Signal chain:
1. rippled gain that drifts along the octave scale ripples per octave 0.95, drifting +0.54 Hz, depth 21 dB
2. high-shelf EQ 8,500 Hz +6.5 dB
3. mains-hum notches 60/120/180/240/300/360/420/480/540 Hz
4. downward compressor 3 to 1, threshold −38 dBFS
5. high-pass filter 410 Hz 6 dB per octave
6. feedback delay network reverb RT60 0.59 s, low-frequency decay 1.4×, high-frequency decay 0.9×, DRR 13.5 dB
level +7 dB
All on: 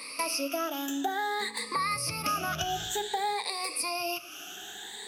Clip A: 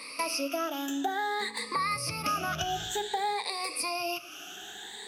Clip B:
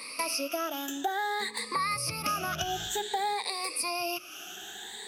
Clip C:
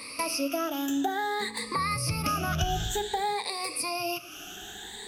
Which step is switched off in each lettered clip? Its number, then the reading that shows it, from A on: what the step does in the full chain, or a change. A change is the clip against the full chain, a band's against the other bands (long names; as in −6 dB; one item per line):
2, 8 kHz band −2.5 dB
6, 250 Hz band −2.5 dB
5, 125 Hz band +10.0 dB